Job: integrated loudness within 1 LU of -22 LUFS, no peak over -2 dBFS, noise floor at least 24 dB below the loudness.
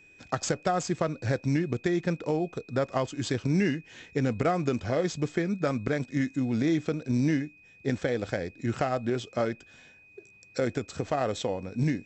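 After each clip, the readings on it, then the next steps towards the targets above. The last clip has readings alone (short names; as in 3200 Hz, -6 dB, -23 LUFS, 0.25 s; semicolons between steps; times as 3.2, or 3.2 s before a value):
steady tone 2500 Hz; tone level -54 dBFS; loudness -29.5 LUFS; peak -12.5 dBFS; loudness target -22.0 LUFS
-> notch 2500 Hz, Q 30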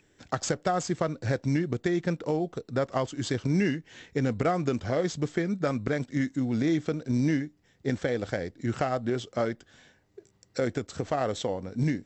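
steady tone none; loudness -29.5 LUFS; peak -12.5 dBFS; loudness target -22.0 LUFS
-> gain +7.5 dB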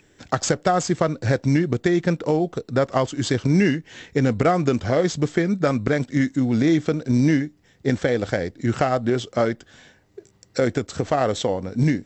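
loudness -22.0 LUFS; peak -5.0 dBFS; noise floor -58 dBFS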